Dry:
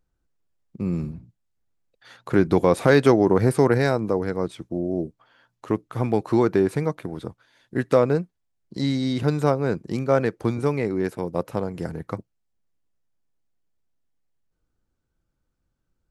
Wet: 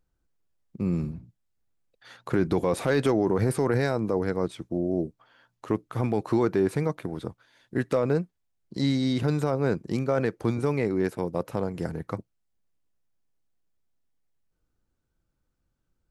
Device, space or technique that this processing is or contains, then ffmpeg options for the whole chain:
clipper into limiter: -af "asoftclip=type=hard:threshold=-5.5dB,alimiter=limit=-13dB:level=0:latency=1:release=16,volume=-1dB"

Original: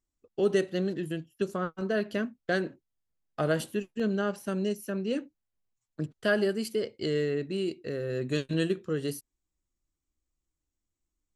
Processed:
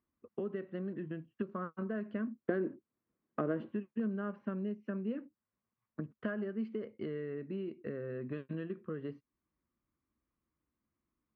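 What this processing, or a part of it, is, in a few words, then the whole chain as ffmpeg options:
bass amplifier: -filter_complex "[0:a]acompressor=threshold=-43dB:ratio=5,highpass=86,equalizer=f=220:t=q:w=4:g=8,equalizer=f=780:t=q:w=4:g=-4,equalizer=f=1.1k:t=q:w=4:g=7,lowpass=f=2.2k:w=0.5412,lowpass=f=2.2k:w=1.3066,asettb=1/sr,asplit=3[a][b][c];[a]atrim=end=2.274[d];[b]atrim=start=2.27:end=3.69,asetpts=PTS-STARTPTS,afade=t=in:d=0.004:c=qsin,afade=t=out:st=1.416:d=0.004:c=qsin,equalizer=f=340:w=1.2:g=11[e];[c]atrim=start=3.686[f];[d][e]acrossfade=d=0.004:c1=hsin:c2=qsin[g];[g][f]acrossfade=d=0.004:c1=qsin:c2=hsin,volume=3.5dB"

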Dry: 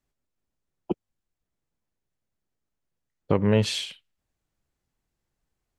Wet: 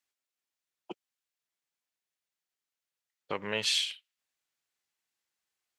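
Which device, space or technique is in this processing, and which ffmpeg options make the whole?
filter by subtraction: -filter_complex "[0:a]asplit=2[a][b];[b]lowpass=2.8k,volume=-1[c];[a][c]amix=inputs=2:normalize=0"

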